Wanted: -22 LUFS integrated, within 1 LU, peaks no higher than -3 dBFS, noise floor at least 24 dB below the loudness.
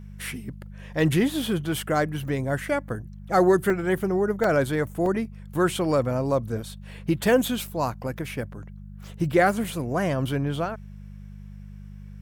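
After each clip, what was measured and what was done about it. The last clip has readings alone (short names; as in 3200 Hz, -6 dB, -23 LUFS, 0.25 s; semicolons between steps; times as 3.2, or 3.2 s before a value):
dropouts 5; longest dropout 2.4 ms; hum 50 Hz; harmonics up to 200 Hz; hum level -39 dBFS; loudness -25.0 LUFS; peak -10.0 dBFS; loudness target -22.0 LUFS
-> interpolate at 2.28/3.7/4.44/5.06/9.64, 2.4 ms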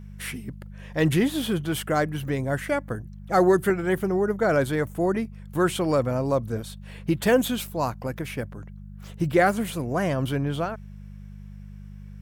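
dropouts 0; hum 50 Hz; harmonics up to 200 Hz; hum level -39 dBFS
-> de-hum 50 Hz, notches 4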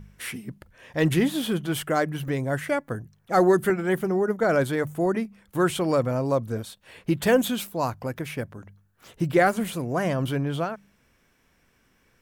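hum none; loudness -25.5 LUFS; peak -9.5 dBFS; loudness target -22.0 LUFS
-> gain +3.5 dB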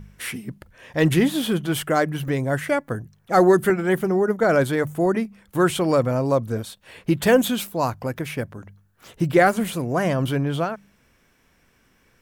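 loudness -22.0 LUFS; peak -6.0 dBFS; noise floor -62 dBFS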